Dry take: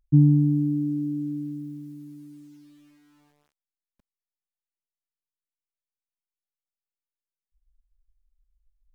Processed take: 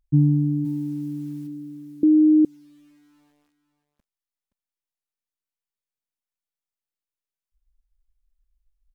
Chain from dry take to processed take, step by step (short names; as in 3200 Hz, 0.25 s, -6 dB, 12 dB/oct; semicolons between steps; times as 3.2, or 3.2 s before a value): 0.64–1.46 spectral limiter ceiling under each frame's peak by 14 dB; echo 0.522 s -12 dB; 2.03–2.45 bleep 308 Hz -10.5 dBFS; gain -1 dB